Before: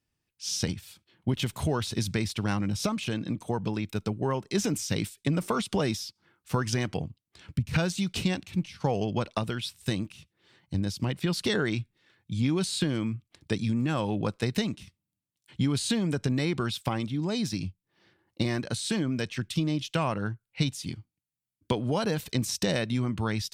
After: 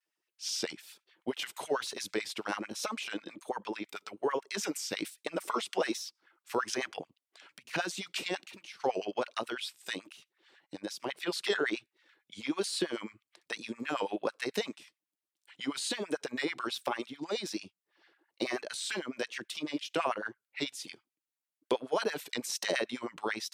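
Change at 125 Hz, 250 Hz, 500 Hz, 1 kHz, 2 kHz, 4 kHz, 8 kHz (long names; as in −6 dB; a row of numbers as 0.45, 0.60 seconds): −25.5, −10.0, −2.5, −1.5, −0.5, −3.0, −4.0 decibels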